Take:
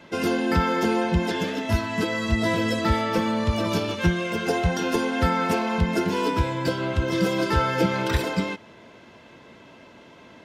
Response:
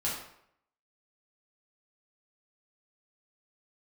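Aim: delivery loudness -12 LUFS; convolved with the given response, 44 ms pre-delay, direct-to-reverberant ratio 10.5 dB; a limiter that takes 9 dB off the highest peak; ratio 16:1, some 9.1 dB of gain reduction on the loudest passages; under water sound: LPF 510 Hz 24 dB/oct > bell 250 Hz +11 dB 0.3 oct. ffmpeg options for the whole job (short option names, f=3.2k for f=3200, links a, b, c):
-filter_complex "[0:a]acompressor=threshold=-25dB:ratio=16,alimiter=level_in=1dB:limit=-24dB:level=0:latency=1,volume=-1dB,asplit=2[a][b];[1:a]atrim=start_sample=2205,adelay=44[c];[b][c]afir=irnorm=-1:irlink=0,volume=-16.5dB[d];[a][d]amix=inputs=2:normalize=0,lowpass=f=510:w=0.5412,lowpass=f=510:w=1.3066,equalizer=f=250:t=o:w=0.3:g=11,volume=20.5dB"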